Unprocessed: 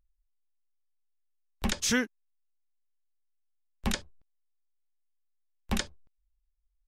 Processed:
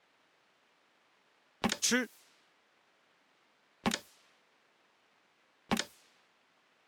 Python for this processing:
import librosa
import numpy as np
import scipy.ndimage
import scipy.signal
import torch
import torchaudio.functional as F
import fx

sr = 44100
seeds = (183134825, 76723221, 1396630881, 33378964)

p1 = fx.quant_dither(x, sr, seeds[0], bits=8, dither='triangular')
p2 = x + F.gain(torch.from_numpy(p1), -4.0).numpy()
p3 = fx.env_lowpass(p2, sr, base_hz=2100.0, full_db=-25.5)
p4 = fx.transient(p3, sr, attack_db=8, sustain_db=2)
p5 = scipy.signal.sosfilt(scipy.signal.butter(2, 210.0, 'highpass', fs=sr, output='sos'), p4)
y = F.gain(torch.from_numpy(p5), -9.0).numpy()